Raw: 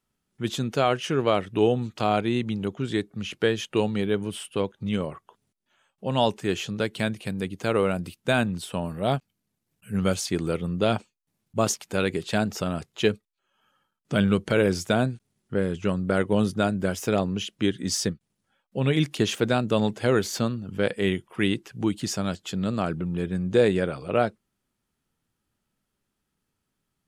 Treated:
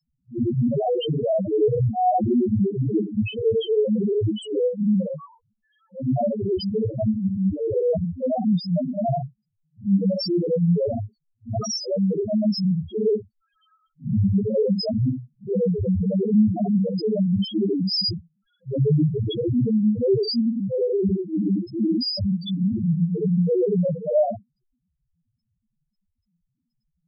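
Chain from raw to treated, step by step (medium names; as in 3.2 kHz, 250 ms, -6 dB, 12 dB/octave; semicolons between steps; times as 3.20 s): phase randomisation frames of 200 ms; peaking EQ 5 kHz +14 dB 0.37 oct; in parallel at +0.5 dB: compressor with a negative ratio -28 dBFS, ratio -1; on the sum: loudest bins only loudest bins 1; trim +8 dB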